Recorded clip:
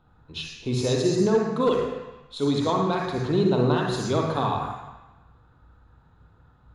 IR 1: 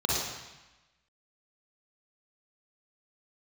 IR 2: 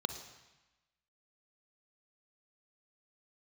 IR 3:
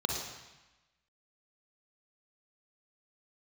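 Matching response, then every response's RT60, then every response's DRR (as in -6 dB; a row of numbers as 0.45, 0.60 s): 3; 1.1, 1.1, 1.1 s; -6.0, 8.0, -0.5 dB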